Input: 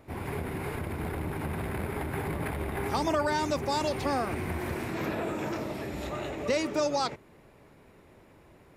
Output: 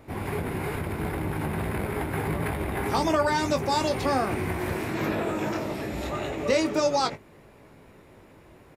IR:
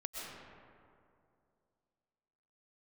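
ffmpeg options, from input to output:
-filter_complex "[0:a]asplit=2[a][b];[b]adelay=19,volume=-7.5dB[c];[a][c]amix=inputs=2:normalize=0,volume=3.5dB"

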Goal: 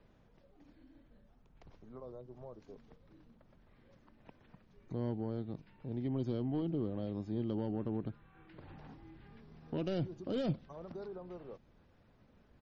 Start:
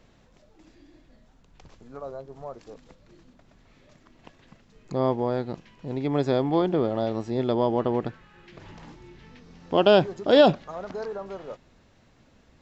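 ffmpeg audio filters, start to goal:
-filter_complex "[0:a]asoftclip=type=tanh:threshold=-15.5dB,highshelf=f=2.9k:g=-11,asetrate=40440,aresample=44100,atempo=1.09051,acrossover=split=310|3000[a][b][c];[b]acompressor=threshold=-47dB:ratio=2[d];[a][d][c]amix=inputs=3:normalize=0,volume=-6dB" -ar 44100 -c:a libmp3lame -b:a 32k

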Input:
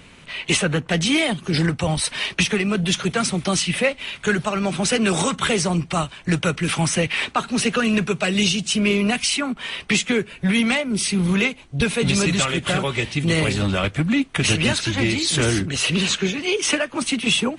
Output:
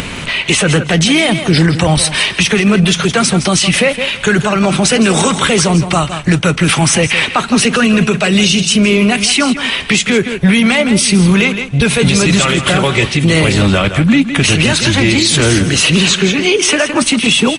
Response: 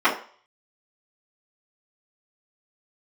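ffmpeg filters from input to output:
-af "acompressor=mode=upward:threshold=-25dB:ratio=2.5,aecho=1:1:164|328:0.224|0.0358,alimiter=level_in=13.5dB:limit=-1dB:release=50:level=0:latency=1,volume=-1dB"

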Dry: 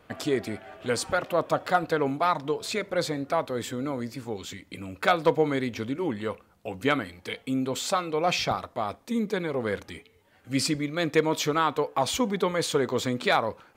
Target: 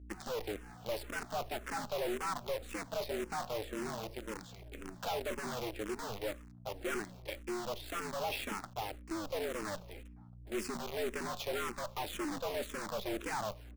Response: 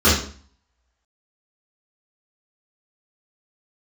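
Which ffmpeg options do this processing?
-filter_complex "[0:a]agate=range=-33dB:threshold=-51dB:ratio=3:detection=peak,aemphasis=mode=reproduction:type=75fm,asettb=1/sr,asplit=3[a][b][c];[a]atrim=end=3.084[d];[b]atrim=start=3.08:end=5.19,asetpts=PTS-STARTPTS,afade=t=in:d=0.004:c=qsin,afade=t=out:st=2.106:d=0.004:c=qsin,bandreject=f=52.56:t=h:w=4,bandreject=f=105.12:t=h:w=4,bandreject=f=157.68:t=h:w=4,bandreject=f=210.24:t=h:w=4,bandreject=f=262.8:t=h:w=4,bandreject=f=315.36:t=h:w=4,bandreject=f=367.92:t=h:w=4,bandreject=f=420.48:t=h:w=4,bandreject=f=473.04:t=h:w=4,bandreject=f=525.6:t=h:w=4,bandreject=f=578.16:t=h:w=4,bandreject=f=630.72:t=h:w=4,bandreject=f=683.28:t=h:w=4,bandreject=f=735.84:t=h:w=4,bandreject=f=788.4:t=h:w=4,bandreject=f=840.96:t=h:w=4,bandreject=f=893.52:t=h:w=4,bandreject=f=946.08:t=h:w=4,bandreject=f=998.64:t=h:w=4,bandreject=f=1.0512k:t=h:w=4[e];[c]atrim=start=5.186[f];[d][e]acrossfade=d=0.004:c1=hsin:c2=qsin[g];[g][f]acrossfade=d=0.004:c1=qsin:c2=hsin,adynamicequalizer=threshold=0.00708:dfrequency=340:dqfactor=6.7:tfrequency=340:tqfactor=6.7:attack=5:release=100:ratio=0.375:range=2.5:mode=boostabove:tftype=bell,afreqshift=96,acrusher=bits=6:dc=4:mix=0:aa=0.000001,aeval=exprs='val(0)+0.00501*(sin(2*PI*60*n/s)+sin(2*PI*2*60*n/s)/2+sin(2*PI*3*60*n/s)/3+sin(2*PI*4*60*n/s)/4+sin(2*PI*5*60*n/s)/5)':c=same,aeval=exprs='(tanh(39.8*val(0)+0.45)-tanh(0.45))/39.8':c=same,asplit=2[h][i];[i]adelay=1691,volume=-26dB,highshelf=f=4k:g=-38[j];[h][j]amix=inputs=2:normalize=0,asplit=2[k][l];[l]afreqshift=-1.9[m];[k][m]amix=inputs=2:normalize=1"

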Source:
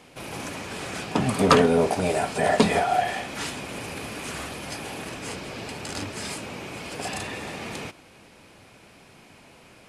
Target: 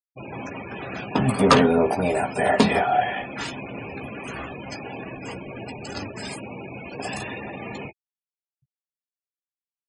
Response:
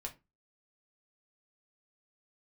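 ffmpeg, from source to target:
-filter_complex "[0:a]asplit=2[a][b];[1:a]atrim=start_sample=2205,asetrate=79380,aresample=44100[c];[b][c]afir=irnorm=-1:irlink=0,volume=-6dB[d];[a][d]amix=inputs=2:normalize=0,afftfilt=real='re*gte(hypot(re,im),0.0316)':imag='im*gte(hypot(re,im),0.0316)':win_size=1024:overlap=0.75,asplit=2[e][f];[f]adelay=15,volume=-8dB[g];[e][g]amix=inputs=2:normalize=0"

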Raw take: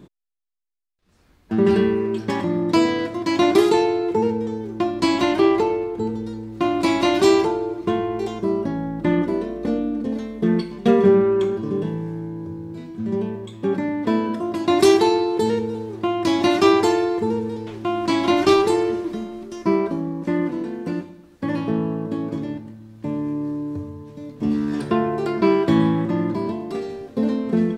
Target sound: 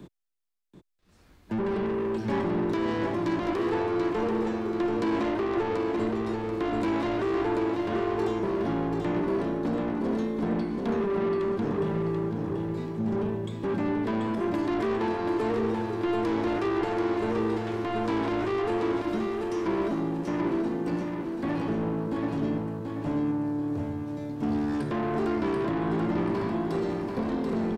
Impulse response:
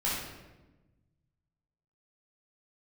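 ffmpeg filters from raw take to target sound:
-filter_complex "[0:a]acrossover=split=110|560|2200[a][b][c][d];[d]acompressor=threshold=-47dB:ratio=6[e];[a][b][c][e]amix=inputs=4:normalize=0,alimiter=limit=-14.5dB:level=0:latency=1:release=51,asoftclip=type=tanh:threshold=-25.5dB,aecho=1:1:735|1470|2205|2940|3675:0.596|0.232|0.0906|0.0353|0.0138"

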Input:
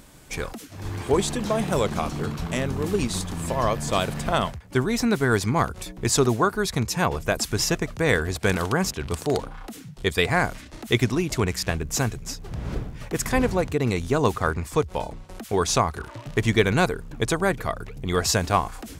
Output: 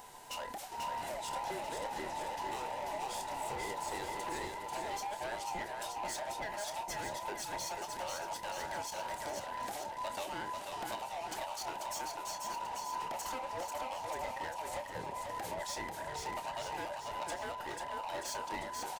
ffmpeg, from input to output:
-filter_complex "[0:a]afftfilt=real='real(if(between(b,1,1008),(2*floor((b-1)/48)+1)*48-b,b),0)':imag='imag(if(between(b,1,1008),(2*floor((b-1)/48)+1)*48-b,b),0)*if(between(b,1,1008),-1,1)':win_size=2048:overlap=0.75,acompressor=threshold=-33dB:ratio=6,volume=34dB,asoftclip=hard,volume=-34dB,asplit=2[a][b];[b]adelay=29,volume=-10dB[c];[a][c]amix=inputs=2:normalize=0,aecho=1:1:490|931|1328|1685|2007:0.631|0.398|0.251|0.158|0.1,volume=-4dB"

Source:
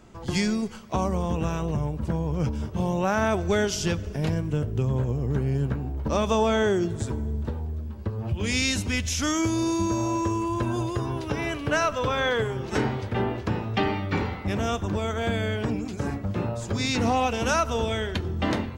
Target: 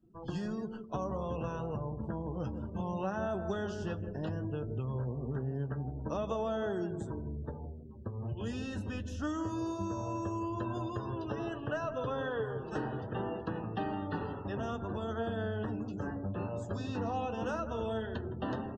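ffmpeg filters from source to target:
-filter_complex "[0:a]asuperstop=centerf=2200:order=12:qfactor=3.7,lowshelf=f=100:g=-6.5,asplit=2[a][b];[b]adelay=162,lowpass=f=850:p=1,volume=-8dB,asplit=2[c][d];[d]adelay=162,lowpass=f=850:p=1,volume=0.38,asplit=2[e][f];[f]adelay=162,lowpass=f=850:p=1,volume=0.38,asplit=2[g][h];[h]adelay=162,lowpass=f=850:p=1,volume=0.38[i];[c][e][g][i]amix=inputs=4:normalize=0[j];[a][j]amix=inputs=2:normalize=0,afftdn=nr=27:nf=-44,flanger=delay=6.1:depth=4.4:regen=46:speed=0.15:shape=sinusoidal,acrossover=split=610|1800[k][l][m];[k]acompressor=threshold=-31dB:ratio=4[n];[l]acompressor=threshold=-37dB:ratio=4[o];[m]acompressor=threshold=-51dB:ratio=4[p];[n][o][p]amix=inputs=3:normalize=0,equalizer=f=6.9k:t=o:w=1.7:g=-4.5,areverse,acompressor=mode=upward:threshold=-55dB:ratio=2.5,areverse,volume=-2.5dB"

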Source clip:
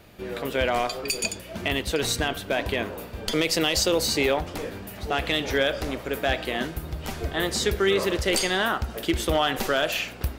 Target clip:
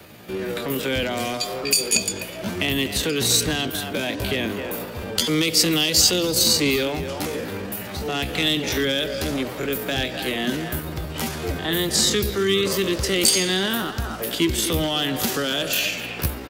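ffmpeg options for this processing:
-filter_complex "[0:a]highpass=99,bandreject=f=670:w=22,atempo=0.63,highshelf=f=9.5k:g=4.5,asplit=2[a][b];[b]adelay=250,highpass=300,lowpass=3.4k,asoftclip=type=hard:threshold=-19dB,volume=-11dB[c];[a][c]amix=inputs=2:normalize=0,acrossover=split=410|3000[d][e][f];[e]acompressor=threshold=-36dB:ratio=6[g];[d][g][f]amix=inputs=3:normalize=0,acrossover=split=320|920|2600[h][i][j][k];[i]asoftclip=type=tanh:threshold=-34dB[l];[h][l][j][k]amix=inputs=4:normalize=0,volume=7.5dB"

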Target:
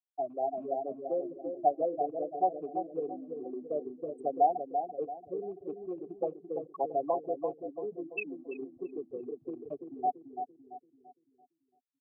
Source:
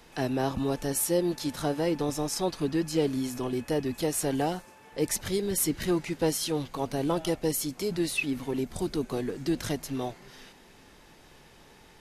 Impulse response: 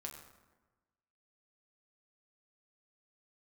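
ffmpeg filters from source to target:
-filter_complex "[0:a]asplit=2[a][b];[1:a]atrim=start_sample=2205,lowpass=2.2k[c];[b][c]afir=irnorm=-1:irlink=0,volume=1.5dB[d];[a][d]amix=inputs=2:normalize=0,afftfilt=real='re*gte(hypot(re,im),0.251)':imag='im*gte(hypot(re,im),0.251)':win_size=1024:overlap=0.75,acrossover=split=160[e][f];[e]asoftclip=type=hard:threshold=-33.5dB[g];[g][f]amix=inputs=2:normalize=0,acrossover=split=120|290|600[h][i][j][k];[h]acompressor=threshold=-49dB:ratio=4[l];[i]acompressor=threshold=-41dB:ratio=4[m];[j]acompressor=threshold=-32dB:ratio=4[n];[k]acompressor=threshold=-32dB:ratio=4[o];[l][m][n][o]amix=inputs=4:normalize=0,asplit=3[p][q][r];[p]bandpass=f=730:t=q:w=8,volume=0dB[s];[q]bandpass=f=1.09k:t=q:w=8,volume=-6dB[t];[r]bandpass=f=2.44k:t=q:w=8,volume=-9dB[u];[s][t][u]amix=inputs=3:normalize=0,asplit=2[v][w];[w]adelay=338,lowpass=f=830:p=1,volume=-5dB,asplit=2[x][y];[y]adelay=338,lowpass=f=830:p=1,volume=0.45,asplit=2[z][aa];[aa]adelay=338,lowpass=f=830:p=1,volume=0.45,asplit=2[ab][ac];[ac]adelay=338,lowpass=f=830:p=1,volume=0.45,asplit=2[ad][ae];[ae]adelay=338,lowpass=f=830:p=1,volume=0.45,asplit=2[af][ag];[ag]adelay=338,lowpass=f=830:p=1,volume=0.45[ah];[v][x][z][ab][ad][af][ah]amix=inputs=7:normalize=0,dynaudnorm=f=240:g=5:m=6dB,volume=4dB"

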